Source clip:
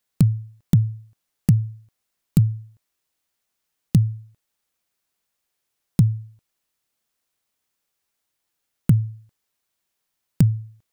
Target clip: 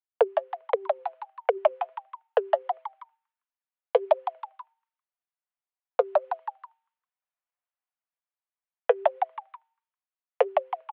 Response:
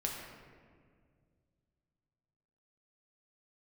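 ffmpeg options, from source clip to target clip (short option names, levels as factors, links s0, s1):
-filter_complex "[0:a]agate=range=0.0224:threshold=0.00282:ratio=3:detection=peak,highpass=f=270:t=q:w=0.5412,highpass=f=270:t=q:w=1.307,lowpass=f=2800:t=q:w=0.5176,lowpass=f=2800:t=q:w=0.7071,lowpass=f=2800:t=q:w=1.932,afreqshift=280,equalizer=f=730:w=0.3:g=12,aecho=1:1:4.1:0.39,asplit=5[s0][s1][s2][s3][s4];[s1]adelay=161,afreqshift=130,volume=0.355[s5];[s2]adelay=322,afreqshift=260,volume=0.141[s6];[s3]adelay=483,afreqshift=390,volume=0.0569[s7];[s4]adelay=644,afreqshift=520,volume=0.0226[s8];[s0][s5][s6][s7][s8]amix=inputs=5:normalize=0,dynaudnorm=f=160:g=13:m=3.35,alimiter=limit=0.251:level=0:latency=1:release=87,flanger=delay=0.9:depth=5.2:regen=49:speed=1.4:shape=sinusoidal,volume=2"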